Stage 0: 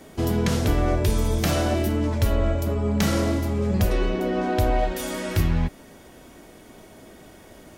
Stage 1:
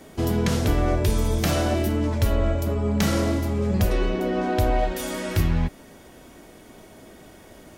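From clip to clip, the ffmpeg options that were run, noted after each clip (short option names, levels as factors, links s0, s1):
-af anull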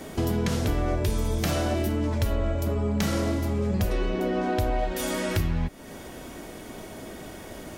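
-af "acompressor=threshold=0.02:ratio=2.5,volume=2.11"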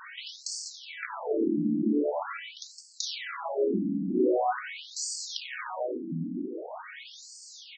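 -filter_complex "[0:a]asplit=2[s0][s1];[s1]adelay=565,lowpass=f=4300:p=1,volume=0.473,asplit=2[s2][s3];[s3]adelay=565,lowpass=f=4300:p=1,volume=0.47,asplit=2[s4][s5];[s5]adelay=565,lowpass=f=4300:p=1,volume=0.47,asplit=2[s6][s7];[s7]adelay=565,lowpass=f=4300:p=1,volume=0.47,asplit=2[s8][s9];[s9]adelay=565,lowpass=f=4300:p=1,volume=0.47,asplit=2[s10][s11];[s11]adelay=565,lowpass=f=4300:p=1,volume=0.47[s12];[s0][s2][s4][s6][s8][s10][s12]amix=inputs=7:normalize=0,asoftclip=type=tanh:threshold=0.0944,afftfilt=real='re*between(b*sr/1024,220*pow(6200/220,0.5+0.5*sin(2*PI*0.44*pts/sr))/1.41,220*pow(6200/220,0.5+0.5*sin(2*PI*0.44*pts/sr))*1.41)':imag='im*between(b*sr/1024,220*pow(6200/220,0.5+0.5*sin(2*PI*0.44*pts/sr))/1.41,220*pow(6200/220,0.5+0.5*sin(2*PI*0.44*pts/sr))*1.41)':win_size=1024:overlap=0.75,volume=2.37"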